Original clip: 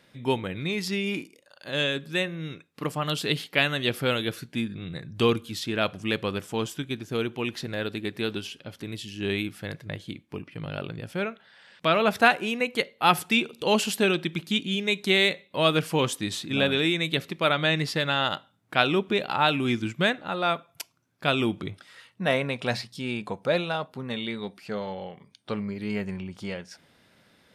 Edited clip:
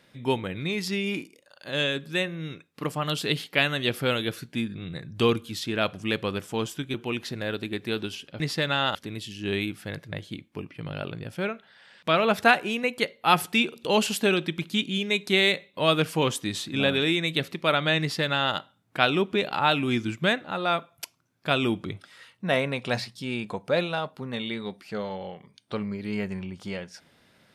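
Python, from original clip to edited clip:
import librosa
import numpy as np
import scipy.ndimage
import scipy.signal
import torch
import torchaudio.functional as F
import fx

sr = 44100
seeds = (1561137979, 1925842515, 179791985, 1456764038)

y = fx.edit(x, sr, fx.cut(start_s=6.94, length_s=0.32),
    fx.duplicate(start_s=17.78, length_s=0.55, to_s=8.72), tone=tone)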